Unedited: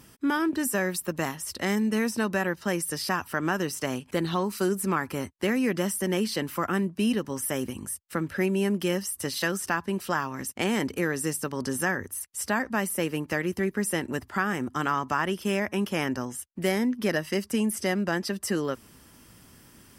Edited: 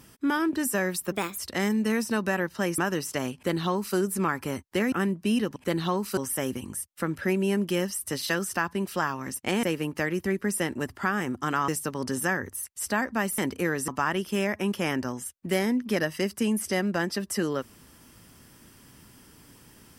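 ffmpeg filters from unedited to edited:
-filter_complex "[0:a]asplit=11[s0][s1][s2][s3][s4][s5][s6][s7][s8][s9][s10];[s0]atrim=end=1.124[s11];[s1]atrim=start=1.12:end=1.45,asetpts=PTS-STARTPTS,asetrate=55566,aresample=44100[s12];[s2]atrim=start=1.446:end=2.852[s13];[s3]atrim=start=3.458:end=5.602[s14];[s4]atrim=start=6.658:end=7.302[s15];[s5]atrim=start=4.028:end=4.642[s16];[s6]atrim=start=7.298:end=10.762[s17];[s7]atrim=start=12.958:end=15.012[s18];[s8]atrim=start=11.258:end=12.962[s19];[s9]atrim=start=10.758:end=11.262[s20];[s10]atrim=start=15.008[s21];[s11][s12]acrossfade=d=0.004:c1=hsin:c2=hsin[s22];[s22][s13]acrossfade=d=0.004:c1=hsin:c2=hsin[s23];[s23][s14]acrossfade=d=0.004:c1=hsin:c2=hsin[s24];[s24][s15]acrossfade=d=0.004:c1=hsin:c2=hsin[s25];[s25][s16]acrossfade=d=0.004:c1=hsin:c2=hsin[s26];[s26][s17]acrossfade=d=0.004:c1=hsin:c2=hsin[s27];[s27][s18]acrossfade=d=0.004:c1=hsin:c2=hsin[s28];[s28][s19]acrossfade=d=0.004:c1=hsin:c2=hsin[s29];[s29][s20]acrossfade=d=0.004:c1=hsin:c2=hsin[s30];[s30][s21]acrossfade=d=0.004:c1=hsin:c2=hsin"

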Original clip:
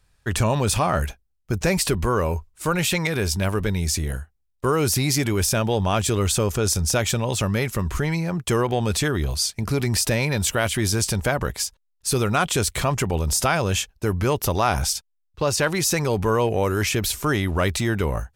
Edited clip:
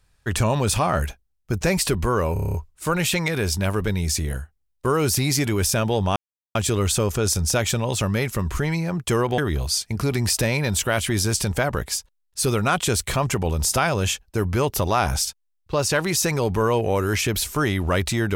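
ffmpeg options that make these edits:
-filter_complex "[0:a]asplit=10[s0][s1][s2][s3][s4][s5][s6][s7][s8][s9];[s0]atrim=end=2.362[s10];[s1]atrim=start=2.328:end=2.362[s11];[s2]atrim=start=2.328:end=2.362[s12];[s3]atrim=start=2.328:end=2.362[s13];[s4]atrim=start=2.328:end=2.362[s14];[s5]atrim=start=2.328:end=2.362[s15];[s6]atrim=start=2.328:end=2.362[s16];[s7]atrim=start=2.328:end=5.95,asetpts=PTS-STARTPTS,afade=t=out:st=3.618:d=0.004:c=hsin,apad=pad_dur=0.39[s17];[s8]atrim=start=5.95:end=8.782,asetpts=PTS-STARTPTS,afade=t=in:d=0.004:c=hsin[s18];[s9]atrim=start=9.058[s19];[s10][s11]acrossfade=d=0.004:c1=hsin:c2=hsin[s20];[s20][s12]acrossfade=d=0.004:c1=hsin:c2=hsin[s21];[s21][s13]acrossfade=d=0.004:c1=hsin:c2=hsin[s22];[s22][s14]acrossfade=d=0.004:c1=hsin:c2=hsin[s23];[s23][s15]acrossfade=d=0.004:c1=hsin:c2=hsin[s24];[s24][s16]acrossfade=d=0.004:c1=hsin:c2=hsin[s25];[s17][s18]concat=n=2:v=0:a=1[s26];[s25][s26]acrossfade=d=0.004:c1=hsin:c2=hsin[s27];[s27][s19]acrossfade=d=0.004:c1=hsin:c2=hsin"

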